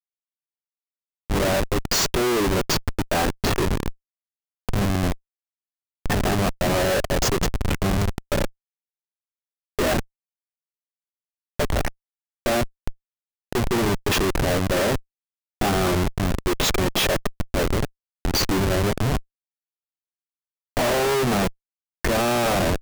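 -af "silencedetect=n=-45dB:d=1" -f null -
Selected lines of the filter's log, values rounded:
silence_start: 0.00
silence_end: 1.30 | silence_duration: 1.30
silence_start: 8.50
silence_end: 9.79 | silence_duration: 1.29
silence_start: 10.04
silence_end: 11.59 | silence_duration: 1.56
silence_start: 19.22
silence_end: 20.77 | silence_duration: 1.55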